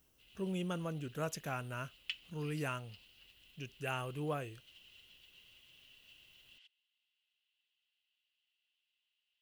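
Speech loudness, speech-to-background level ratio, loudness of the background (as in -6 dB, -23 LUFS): -41.0 LUFS, 14.0 dB, -55.0 LUFS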